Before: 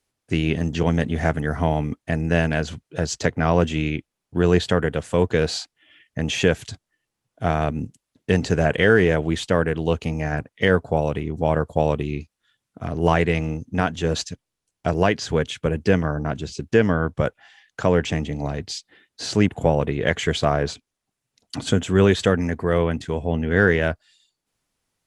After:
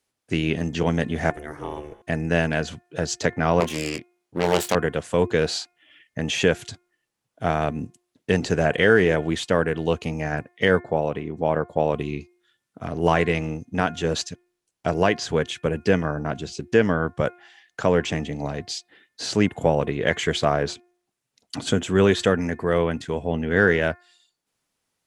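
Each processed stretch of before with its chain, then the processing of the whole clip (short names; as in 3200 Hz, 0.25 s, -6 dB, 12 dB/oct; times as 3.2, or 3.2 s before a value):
1.3–2.02 high shelf 7600 Hz +11.5 dB + resonator 61 Hz, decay 2 s + ring modulator 220 Hz
3.6–4.75 self-modulated delay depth 0.69 ms + low shelf 110 Hz -11.5 dB + doubler 24 ms -8 dB
10.8–11.94 LPF 2500 Hz 6 dB/oct + low shelf 84 Hz -10 dB
whole clip: low shelf 94 Hz -11 dB; de-hum 354.4 Hz, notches 7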